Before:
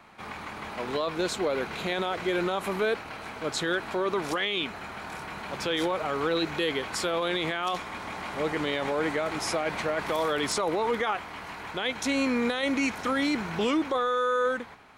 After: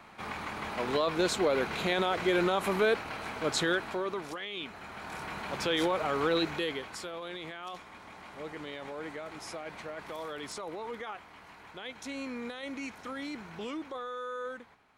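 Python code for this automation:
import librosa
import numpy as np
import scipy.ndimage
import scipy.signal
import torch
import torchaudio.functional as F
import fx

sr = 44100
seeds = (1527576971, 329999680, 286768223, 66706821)

y = fx.gain(x, sr, db=fx.line((3.63, 0.5), (4.41, -11.5), (5.26, -1.0), (6.38, -1.0), (7.11, -12.5)))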